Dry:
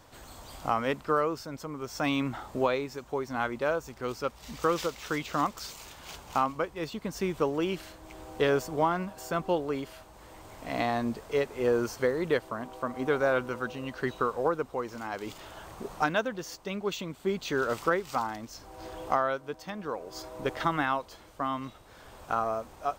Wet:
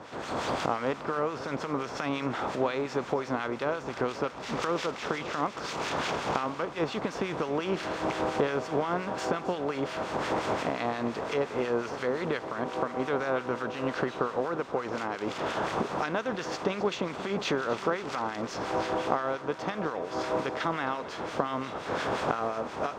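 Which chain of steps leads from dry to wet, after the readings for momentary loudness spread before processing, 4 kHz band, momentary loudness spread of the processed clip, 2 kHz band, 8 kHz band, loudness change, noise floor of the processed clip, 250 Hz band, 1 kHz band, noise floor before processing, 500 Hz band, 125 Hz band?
16 LU, +2.5 dB, 4 LU, +0.5 dB, -0.5 dB, 0.0 dB, -40 dBFS, +1.0 dB, +0.5 dB, -53 dBFS, +0.5 dB, +0.5 dB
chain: per-bin compression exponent 0.6; recorder AGC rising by 29 dB/s; HPF 87 Hz 12 dB/oct; high shelf 12000 Hz -5.5 dB; harmonic tremolo 5.7 Hz, depth 70%, crossover 1400 Hz; air absorption 65 m; split-band echo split 1200 Hz, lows 0.535 s, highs 0.265 s, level -15 dB; gain -3 dB

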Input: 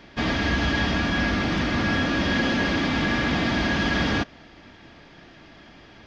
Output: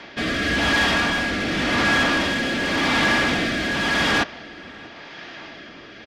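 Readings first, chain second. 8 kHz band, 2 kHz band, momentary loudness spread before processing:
n/a, +5.5 dB, 2 LU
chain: overdrive pedal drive 21 dB, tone 4400 Hz, clips at -11 dBFS; rotary speaker horn 0.9 Hz; outdoor echo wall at 110 m, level -21 dB

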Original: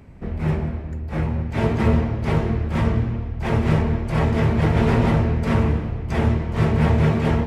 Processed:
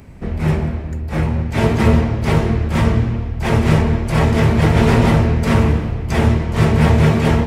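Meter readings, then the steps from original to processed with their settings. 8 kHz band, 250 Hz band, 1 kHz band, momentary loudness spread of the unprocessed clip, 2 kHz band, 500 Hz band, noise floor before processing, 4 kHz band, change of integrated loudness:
n/a, +5.0 dB, +5.5 dB, 8 LU, +6.5 dB, +5.0 dB, -30 dBFS, +8.5 dB, +5.0 dB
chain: high shelf 4300 Hz +9.5 dB; gain +5 dB

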